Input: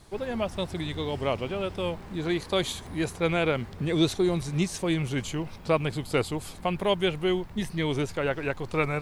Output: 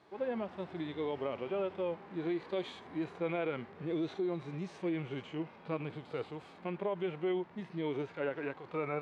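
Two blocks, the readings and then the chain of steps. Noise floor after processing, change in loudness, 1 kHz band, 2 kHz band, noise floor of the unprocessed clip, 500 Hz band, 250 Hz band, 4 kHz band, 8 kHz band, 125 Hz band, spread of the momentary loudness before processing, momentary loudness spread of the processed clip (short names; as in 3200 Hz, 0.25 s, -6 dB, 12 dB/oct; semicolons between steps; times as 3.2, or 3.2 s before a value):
-55 dBFS, -9.5 dB, -10.0 dB, -12.5 dB, -43 dBFS, -8.0 dB, -8.5 dB, -17.5 dB, under -25 dB, -13.5 dB, 7 LU, 6 LU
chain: harmonic-percussive split percussive -17 dB; limiter -25 dBFS, peak gain reduction 11.5 dB; BPF 280–2500 Hz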